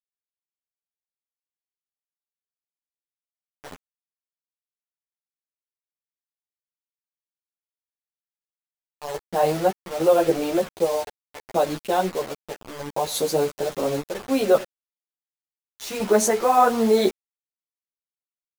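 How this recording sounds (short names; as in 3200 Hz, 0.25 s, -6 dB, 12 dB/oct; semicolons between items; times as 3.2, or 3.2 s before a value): random-step tremolo, depth 90%; a quantiser's noise floor 6-bit, dither none; a shimmering, thickened sound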